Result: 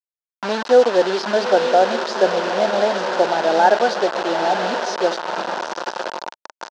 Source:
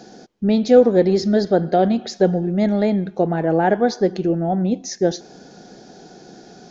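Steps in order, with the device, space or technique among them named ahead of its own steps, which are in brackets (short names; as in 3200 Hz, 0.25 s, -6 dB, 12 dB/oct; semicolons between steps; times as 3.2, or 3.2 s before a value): HPF 120 Hz 12 dB/oct; diffused feedback echo 0.924 s, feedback 53%, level -8 dB; hand-held game console (bit-crush 4-bit; speaker cabinet 450–5400 Hz, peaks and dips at 610 Hz +5 dB, 920 Hz +9 dB, 1500 Hz +6 dB, 2200 Hz -6 dB)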